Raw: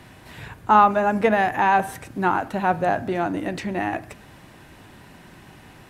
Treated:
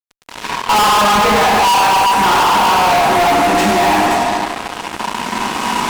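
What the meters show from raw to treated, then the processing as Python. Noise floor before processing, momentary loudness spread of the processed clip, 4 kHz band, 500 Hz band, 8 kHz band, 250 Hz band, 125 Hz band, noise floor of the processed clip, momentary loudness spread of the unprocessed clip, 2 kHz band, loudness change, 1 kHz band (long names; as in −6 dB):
−48 dBFS, 11 LU, +24.5 dB, +8.0 dB, +24.5 dB, +7.0 dB, +5.5 dB, −35 dBFS, 16 LU, +10.5 dB, +9.0 dB, +10.5 dB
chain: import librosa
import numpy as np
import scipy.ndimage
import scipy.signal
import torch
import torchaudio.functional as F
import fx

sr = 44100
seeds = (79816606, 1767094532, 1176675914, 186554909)

y = fx.recorder_agc(x, sr, target_db=-10.5, rise_db_per_s=6.3, max_gain_db=30)
y = fx.cabinet(y, sr, low_hz=250.0, low_slope=24, high_hz=8700.0, hz=(340.0, 570.0, 1000.0, 1800.0, 4100.0), db=(-8, -10, 8, -8, -5))
y = fx.echo_feedback(y, sr, ms=68, feedback_pct=37, wet_db=-7.5)
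y = fx.rev_fdn(y, sr, rt60_s=2.4, lf_ratio=0.95, hf_ratio=0.7, size_ms=85.0, drr_db=-7.0)
y = fx.fuzz(y, sr, gain_db=26.0, gate_db=-32.0)
y = y * librosa.db_to_amplitude(3.0)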